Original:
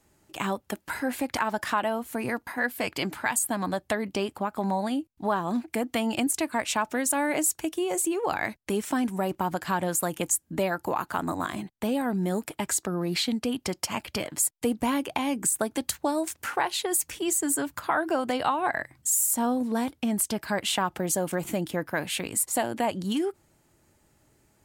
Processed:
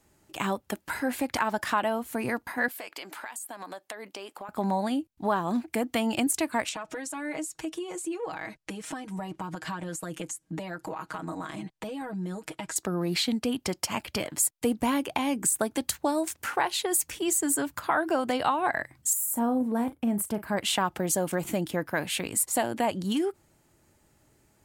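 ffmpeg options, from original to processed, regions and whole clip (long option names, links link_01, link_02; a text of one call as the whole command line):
ffmpeg -i in.wav -filter_complex "[0:a]asettb=1/sr,asplit=3[link_01][link_02][link_03];[link_01]atrim=end=2.684[link_04];[link_02]atrim=start=2.68:end=4.49,asetpts=PTS-STARTPTS,afade=type=in:duration=0.004:curve=qsin,afade=type=out:start_time=1.806:duration=0.004:curve=qsin,highpass=470,acompressor=threshold=-36dB:ratio=5:attack=3.2:release=140:knee=1:detection=peak[link_05];[link_03]atrim=start=4.486[link_06];[link_04][link_05]acrossfade=duration=0.004:curve1=hsin:curve2=qsin[link_07];[link_07][link_06]acrossfade=duration=0.004:curve1=qsin:curve2=hsin,asettb=1/sr,asplit=3[link_08][link_09][link_10];[link_08]atrim=end=6.694[link_11];[link_09]atrim=start=6.69:end=12.76,asetpts=PTS-STARTPTS,afade=type=in:duration=0.004:curve=qsin,afade=type=out:start_time=6.066:duration=0.004:curve=qsin,acompressor=threshold=-35dB:ratio=4:attack=3.2:release=140:knee=1:detection=peak,lowpass=8700,aecho=1:1:6.3:0.87,atrim=end_sample=267687[link_12];[link_10]atrim=start=12.756[link_13];[link_11][link_12]acrossfade=duration=0.004:curve1=hsin:curve2=qsin[link_14];[link_14][link_13]acrossfade=duration=0.004:curve1=qsin:curve2=hsin,asettb=1/sr,asplit=3[link_15][link_16][link_17];[link_15]atrim=end=19.134[link_18];[link_16]atrim=start=19.13:end=20.57,asetpts=PTS-STARTPTS,afade=type=in:duration=0.004:curve=qsin,afade=type=out:start_time=1.436:duration=0.004:curve=qsin,equalizer=frequency=4600:width_type=o:width=1.9:gain=-14.5,asplit=2[link_19][link_20];[link_20]adelay=39,volume=-13dB[link_21];[link_19][link_21]amix=inputs=2:normalize=0,atrim=end_sample=63504[link_22];[link_17]atrim=start=20.566[link_23];[link_18][link_22]acrossfade=duration=0.004:curve1=hsin:curve2=qsin[link_24];[link_24][link_23]acrossfade=duration=0.004:curve1=qsin:curve2=hsin" out.wav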